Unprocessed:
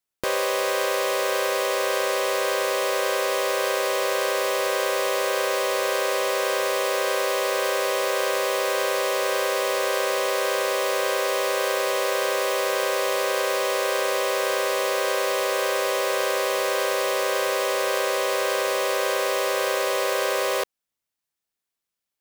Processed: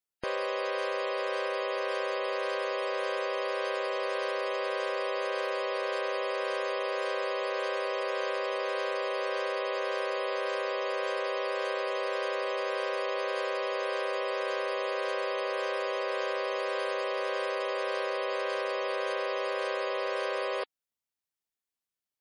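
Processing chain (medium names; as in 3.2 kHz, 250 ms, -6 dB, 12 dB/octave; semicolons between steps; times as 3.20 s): spectral gate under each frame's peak -20 dB strong; trim -7.5 dB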